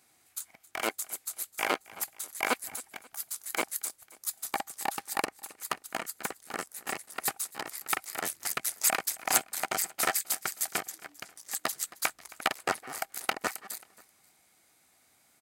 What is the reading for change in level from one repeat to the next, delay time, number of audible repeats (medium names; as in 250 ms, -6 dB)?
-6.5 dB, 268 ms, 2